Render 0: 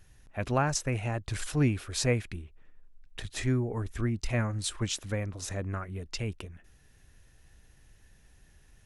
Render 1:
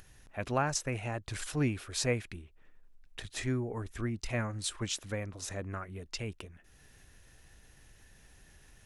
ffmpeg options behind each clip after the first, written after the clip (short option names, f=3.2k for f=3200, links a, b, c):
-af "lowshelf=f=200:g=-5.5,acompressor=mode=upward:threshold=-47dB:ratio=2.5,volume=-2dB"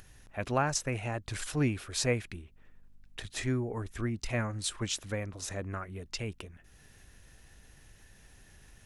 -af "aeval=exprs='val(0)+0.000501*(sin(2*PI*50*n/s)+sin(2*PI*2*50*n/s)/2+sin(2*PI*3*50*n/s)/3+sin(2*PI*4*50*n/s)/4+sin(2*PI*5*50*n/s)/5)':c=same,volume=1.5dB"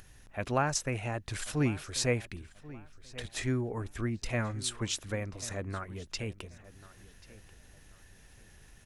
-filter_complex "[0:a]asplit=2[a][b];[b]adelay=1087,lowpass=f=3.9k:p=1,volume=-18dB,asplit=2[c][d];[d]adelay=1087,lowpass=f=3.9k:p=1,volume=0.29,asplit=2[e][f];[f]adelay=1087,lowpass=f=3.9k:p=1,volume=0.29[g];[a][c][e][g]amix=inputs=4:normalize=0"